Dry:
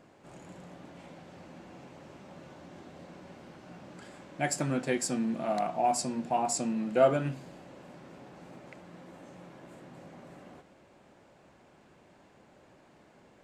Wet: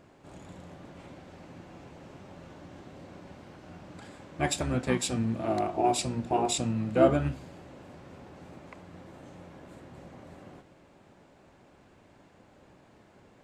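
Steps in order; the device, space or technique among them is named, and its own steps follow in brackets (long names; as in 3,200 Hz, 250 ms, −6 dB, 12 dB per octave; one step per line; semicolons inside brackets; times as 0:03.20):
octave pedal (pitch-shifted copies added −12 semitones −3 dB)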